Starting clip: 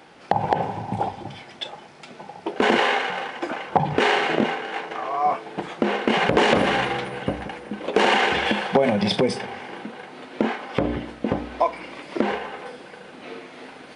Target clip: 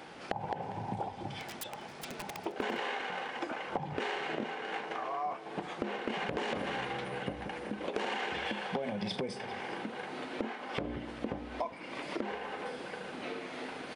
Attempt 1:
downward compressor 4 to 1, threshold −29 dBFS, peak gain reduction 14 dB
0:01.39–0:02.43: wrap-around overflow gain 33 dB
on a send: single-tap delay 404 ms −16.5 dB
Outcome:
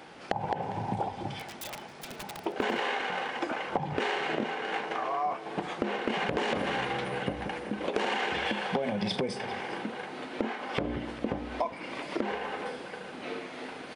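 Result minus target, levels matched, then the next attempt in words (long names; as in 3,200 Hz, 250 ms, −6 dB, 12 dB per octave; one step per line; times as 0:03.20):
downward compressor: peak gain reduction −5 dB
downward compressor 4 to 1, threshold −36 dBFS, peak gain reduction 19.5 dB
0:01.39–0:02.43: wrap-around overflow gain 33 dB
on a send: single-tap delay 404 ms −16.5 dB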